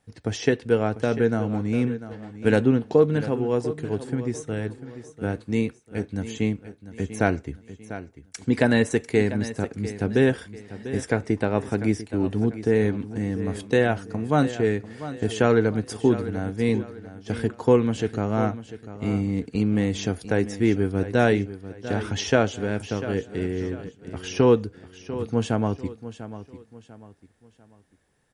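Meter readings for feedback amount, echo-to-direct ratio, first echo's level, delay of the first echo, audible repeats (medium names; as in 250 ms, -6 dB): 35%, -13.0 dB, -13.5 dB, 695 ms, 3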